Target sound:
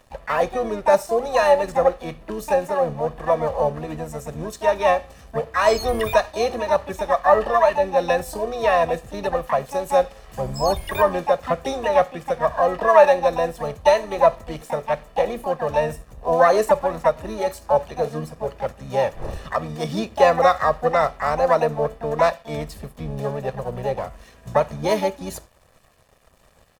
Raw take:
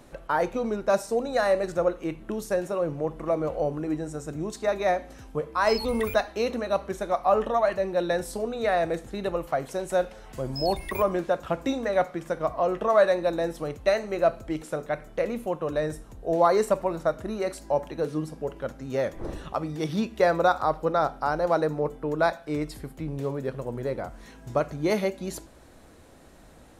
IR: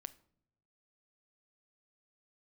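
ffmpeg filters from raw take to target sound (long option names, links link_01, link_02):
-filter_complex "[0:a]aeval=exprs='sgn(val(0))*max(abs(val(0))-0.00299,0)':channel_layout=same,aecho=1:1:1.7:0.65,asplit=2[link_01][link_02];[link_02]asetrate=66075,aresample=44100,atempo=0.66742,volume=-6dB[link_03];[link_01][link_03]amix=inputs=2:normalize=0,volume=2.5dB"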